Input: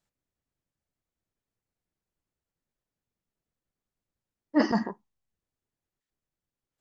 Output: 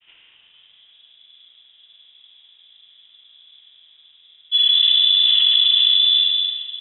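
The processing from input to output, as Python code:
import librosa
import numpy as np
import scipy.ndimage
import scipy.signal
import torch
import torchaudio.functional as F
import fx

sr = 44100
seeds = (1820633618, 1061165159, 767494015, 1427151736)

y = fx.rattle_buzz(x, sr, strikes_db=-30.0, level_db=-26.0)
y = fx.granulator(y, sr, seeds[0], grain_ms=100.0, per_s=20.0, spray_ms=100.0, spread_st=0)
y = fx.rev_schroeder(y, sr, rt60_s=2.1, comb_ms=33, drr_db=-3.5)
y = fx.filter_sweep_bandpass(y, sr, from_hz=850.0, to_hz=320.0, start_s=0.27, end_s=1.21, q=1.9)
y = fx.freq_invert(y, sr, carrier_hz=3700)
y = fx.env_flatten(y, sr, amount_pct=100)
y = y * 10.0 ** (5.0 / 20.0)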